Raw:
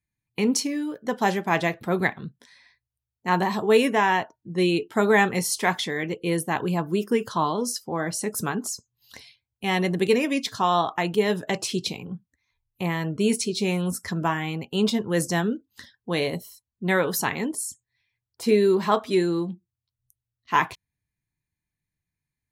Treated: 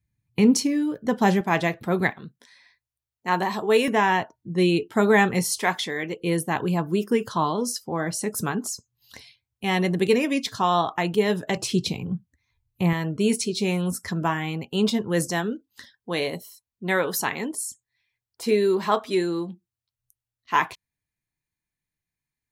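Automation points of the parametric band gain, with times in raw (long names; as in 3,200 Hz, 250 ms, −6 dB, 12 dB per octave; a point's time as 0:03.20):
parametric band 91 Hz 2.6 octaves
+13 dB
from 0:01.41 +2.5 dB
from 0:02.11 −7 dB
from 0:03.88 +5 dB
from 0:05.59 −5.5 dB
from 0:06.20 +2.5 dB
from 0:11.57 +10 dB
from 0:12.93 +1 dB
from 0:15.30 −6.5 dB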